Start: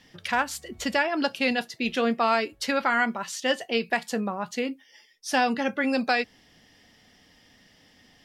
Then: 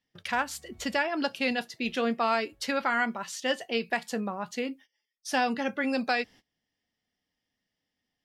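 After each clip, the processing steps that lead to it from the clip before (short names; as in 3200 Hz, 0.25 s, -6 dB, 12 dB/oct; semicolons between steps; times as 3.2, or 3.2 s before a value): gate -46 dBFS, range -23 dB; gain -3.5 dB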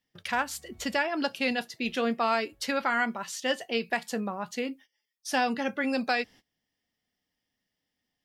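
high shelf 11000 Hz +5 dB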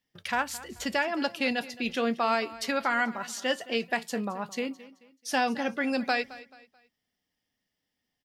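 feedback echo 0.217 s, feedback 35%, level -18 dB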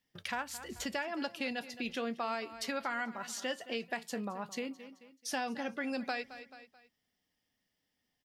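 compressor 2:1, threshold -40 dBFS, peak gain reduction 11 dB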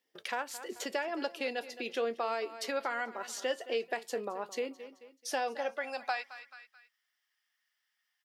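high-pass sweep 410 Hz -> 1400 Hz, 5.28–6.68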